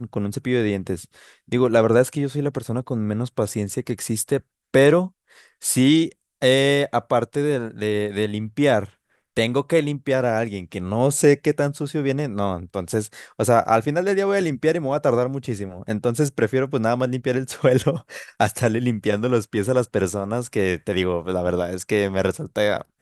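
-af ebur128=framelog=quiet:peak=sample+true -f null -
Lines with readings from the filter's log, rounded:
Integrated loudness:
  I:         -21.8 LUFS
  Threshold: -31.9 LUFS
Loudness range:
  LRA:         2.8 LU
  Threshold: -41.8 LUFS
  LRA low:   -22.8 LUFS
  LRA high:  -19.9 LUFS
Sample peak:
  Peak:       -3.0 dBFS
True peak:
  Peak:       -3.0 dBFS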